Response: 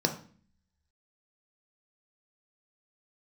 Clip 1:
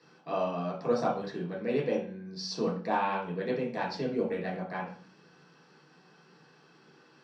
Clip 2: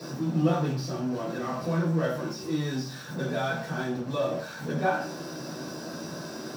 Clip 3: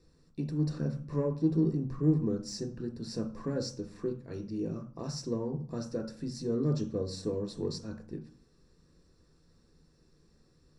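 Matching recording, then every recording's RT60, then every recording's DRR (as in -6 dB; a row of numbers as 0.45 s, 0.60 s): 3; 0.45 s, 0.45 s, 0.45 s; -5.5 dB, -11.5 dB, 3.5 dB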